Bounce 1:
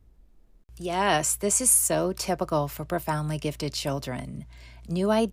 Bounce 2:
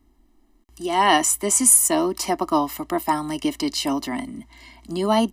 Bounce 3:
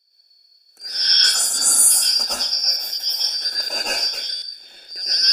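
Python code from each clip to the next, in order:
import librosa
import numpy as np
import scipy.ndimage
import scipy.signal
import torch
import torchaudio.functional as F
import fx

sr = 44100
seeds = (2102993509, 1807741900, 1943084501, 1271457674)

y1 = fx.low_shelf_res(x, sr, hz=200.0, db=-12.0, q=3.0)
y1 = y1 + 0.88 * np.pad(y1, (int(1.0 * sr / 1000.0), 0))[:len(y1)]
y1 = y1 * 10.0 ** (3.0 / 20.0)
y2 = fx.band_shuffle(y1, sr, order='4321')
y2 = fx.rev_plate(y2, sr, seeds[0], rt60_s=0.55, hf_ratio=1.0, predelay_ms=95, drr_db=-8.0)
y2 = fx.buffer_glitch(y2, sr, at_s=(4.35,), block=512, repeats=5)
y2 = y2 * 10.0 ** (-5.5 / 20.0)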